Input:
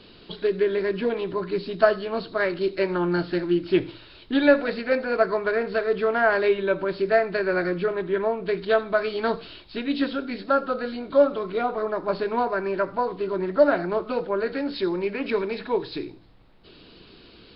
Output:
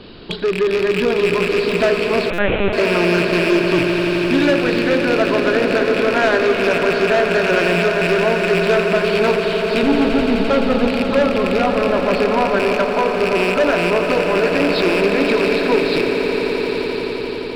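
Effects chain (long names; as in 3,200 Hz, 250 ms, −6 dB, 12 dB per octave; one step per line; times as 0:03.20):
loose part that buzzes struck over −35 dBFS, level −18 dBFS
0:09.83–0:10.88: spectral tilt −4.5 dB per octave
0:12.72–0:13.17: Chebyshev high-pass filter 470 Hz, order 4
in parallel at +2.5 dB: downward compressor, threshold −29 dBFS, peak gain reduction 17 dB
on the sum: soft clipping −17.5 dBFS, distortion −10 dB
on a send: echo that builds up and dies away 86 ms, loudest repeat 8, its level −12 dB
0:02.30–0:02.73: on the sum: linear-prediction vocoder at 8 kHz pitch kept
buffer that repeats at 0:02.33, samples 256, times 8
one half of a high-frequency compander decoder only
level +5 dB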